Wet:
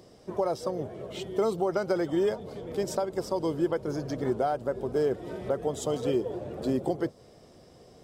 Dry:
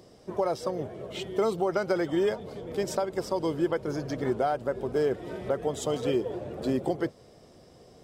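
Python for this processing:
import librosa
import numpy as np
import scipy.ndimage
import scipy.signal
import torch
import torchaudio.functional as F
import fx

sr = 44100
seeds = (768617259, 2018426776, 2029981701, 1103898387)

y = fx.dynamic_eq(x, sr, hz=2200.0, q=0.91, threshold_db=-48.0, ratio=4.0, max_db=-5)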